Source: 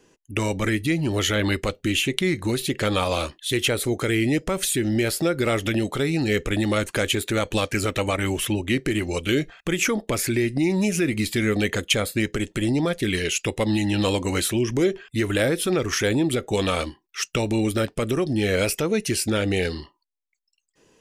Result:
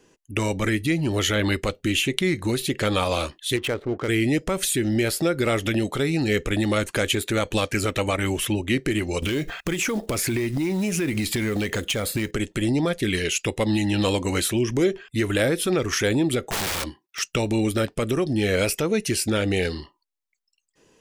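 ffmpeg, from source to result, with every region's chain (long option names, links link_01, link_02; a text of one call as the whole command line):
ffmpeg -i in.wav -filter_complex "[0:a]asettb=1/sr,asplit=3[link_01][link_02][link_03];[link_01]atrim=end=3.564[link_04];[link_02]atrim=start=3.56:end=4.08,asetpts=PTS-STARTPTS,afade=type=in:duration=0.004:curve=qsin,afade=type=out:start_time=0.516:duration=0.004:curve=qsin,lowpass=frequency=1700:poles=1,lowshelf=frequency=290:gain=-4.5,adynamicsmooth=sensitivity=6:basefreq=550[link_05];[link_03]atrim=start=4.076[link_06];[link_04][link_05]acrossfade=duration=0.004:curve1=hsin:curve2=qsin[link_07];[link_07][link_06]acrossfade=duration=0.004:curve1=qsin:curve2=hsin,asettb=1/sr,asplit=3[link_08][link_09][link_10];[link_08]atrim=end=9.224[link_11];[link_09]atrim=start=9.22:end=12.31,asetpts=PTS-STARTPTS,afade=type=in:duration=0.004:curve=qsin,afade=type=out:start_time=3.086:duration=0.004:curve=qsin,acompressor=threshold=-35dB:ratio=5:attack=3.2:release=140:knee=1:detection=peak,aeval=exprs='0.133*sin(PI/2*2.82*val(0)/0.133)':channel_layout=same,acrusher=bits=6:mode=log:mix=0:aa=0.000001[link_12];[link_10]atrim=start=12.306[link_13];[link_11][link_12]acrossfade=duration=0.004:curve1=hsin:curve2=qsin[link_14];[link_14][link_13]acrossfade=duration=0.004:curve1=qsin:curve2=hsin,asettb=1/sr,asplit=3[link_15][link_16][link_17];[link_15]atrim=end=16.474[link_18];[link_16]atrim=start=16.47:end=17.19,asetpts=PTS-STARTPTS,afade=type=in:duration=0.004:curve=qsin,afade=type=out:start_time=0.716:duration=0.004:curve=qsin,highpass=58,aeval=exprs='(mod(11.9*val(0)+1,2)-1)/11.9':channel_layout=same[link_19];[link_17]atrim=start=17.186[link_20];[link_18][link_19]acrossfade=duration=0.004:curve1=hsin:curve2=qsin[link_21];[link_21][link_20]acrossfade=duration=0.004:curve1=qsin:curve2=hsin" out.wav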